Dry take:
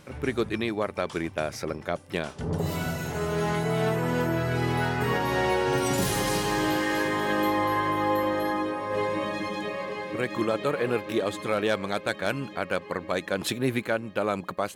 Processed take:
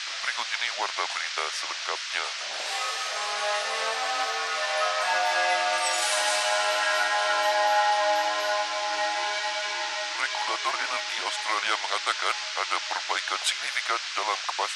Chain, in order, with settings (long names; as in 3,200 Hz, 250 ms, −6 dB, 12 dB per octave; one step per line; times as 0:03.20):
frequency shifter −210 Hz
noise in a band 1,200–5,800 Hz −39 dBFS
elliptic band-pass filter 670–9,200 Hz, stop band 60 dB
level +5.5 dB